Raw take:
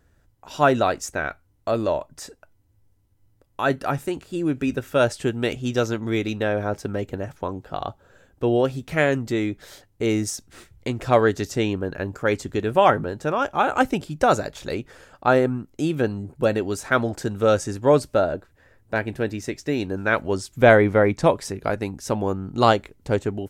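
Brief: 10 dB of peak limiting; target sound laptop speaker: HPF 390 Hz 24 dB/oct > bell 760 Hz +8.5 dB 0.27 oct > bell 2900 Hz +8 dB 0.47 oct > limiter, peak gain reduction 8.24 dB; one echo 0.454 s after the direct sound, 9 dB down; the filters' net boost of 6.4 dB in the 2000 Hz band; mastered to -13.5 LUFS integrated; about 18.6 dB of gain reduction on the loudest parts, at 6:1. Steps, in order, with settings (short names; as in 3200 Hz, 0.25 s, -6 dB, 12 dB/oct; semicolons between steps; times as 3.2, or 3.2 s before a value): bell 2000 Hz +7 dB; compressor 6:1, threshold -28 dBFS; limiter -23 dBFS; HPF 390 Hz 24 dB/oct; bell 760 Hz +8.5 dB 0.27 oct; bell 2900 Hz +8 dB 0.47 oct; echo 0.454 s -9 dB; gain +24 dB; limiter -1.5 dBFS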